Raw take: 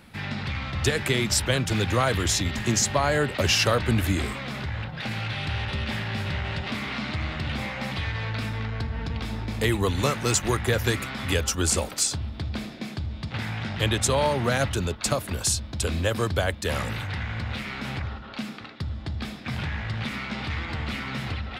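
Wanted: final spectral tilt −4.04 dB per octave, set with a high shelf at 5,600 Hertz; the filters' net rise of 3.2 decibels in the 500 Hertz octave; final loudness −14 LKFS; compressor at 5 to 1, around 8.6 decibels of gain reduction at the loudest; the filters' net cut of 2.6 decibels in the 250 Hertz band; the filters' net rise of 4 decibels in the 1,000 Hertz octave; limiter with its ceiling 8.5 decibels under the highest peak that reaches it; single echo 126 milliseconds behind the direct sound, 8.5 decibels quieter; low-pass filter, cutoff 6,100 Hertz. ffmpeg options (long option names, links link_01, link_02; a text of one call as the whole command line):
ffmpeg -i in.wav -af "lowpass=6100,equalizer=frequency=250:width_type=o:gain=-5,equalizer=frequency=500:width_type=o:gain=4,equalizer=frequency=1000:width_type=o:gain=4,highshelf=frequency=5600:gain=6.5,acompressor=threshold=-25dB:ratio=5,alimiter=limit=-20.5dB:level=0:latency=1,aecho=1:1:126:0.376,volume=16.5dB" out.wav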